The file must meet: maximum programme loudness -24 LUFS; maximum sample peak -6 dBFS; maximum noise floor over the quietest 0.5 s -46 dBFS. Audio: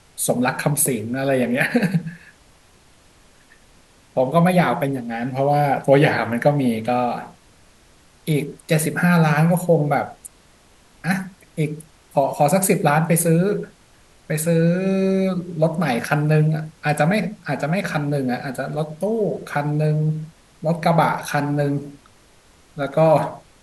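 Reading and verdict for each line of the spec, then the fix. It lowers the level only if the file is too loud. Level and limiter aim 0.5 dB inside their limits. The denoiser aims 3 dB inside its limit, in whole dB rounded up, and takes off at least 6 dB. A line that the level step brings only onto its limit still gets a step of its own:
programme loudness -20.0 LUFS: fail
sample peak -2.0 dBFS: fail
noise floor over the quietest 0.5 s -52 dBFS: OK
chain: gain -4.5 dB

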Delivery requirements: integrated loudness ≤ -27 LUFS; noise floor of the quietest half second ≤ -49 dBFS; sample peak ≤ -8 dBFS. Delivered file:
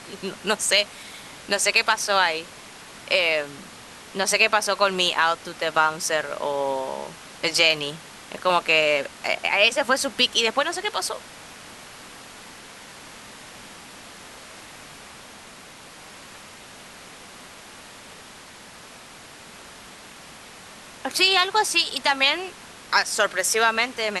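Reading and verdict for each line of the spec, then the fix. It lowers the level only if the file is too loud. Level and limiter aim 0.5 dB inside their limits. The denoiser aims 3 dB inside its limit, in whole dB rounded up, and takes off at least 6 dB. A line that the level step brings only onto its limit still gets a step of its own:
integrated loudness -21.5 LUFS: fail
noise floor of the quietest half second -44 dBFS: fail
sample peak -4.0 dBFS: fail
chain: gain -6 dB

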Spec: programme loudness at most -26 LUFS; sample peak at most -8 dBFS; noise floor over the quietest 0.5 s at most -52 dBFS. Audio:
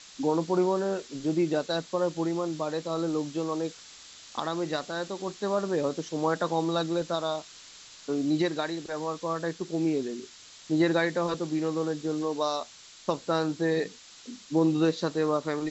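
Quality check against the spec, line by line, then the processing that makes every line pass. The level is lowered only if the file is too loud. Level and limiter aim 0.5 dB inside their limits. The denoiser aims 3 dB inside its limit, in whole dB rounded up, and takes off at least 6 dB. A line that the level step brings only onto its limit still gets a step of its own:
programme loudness -29.0 LUFS: OK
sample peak -11.0 dBFS: OK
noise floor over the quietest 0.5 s -49 dBFS: fail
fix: denoiser 6 dB, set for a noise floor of -49 dBFS

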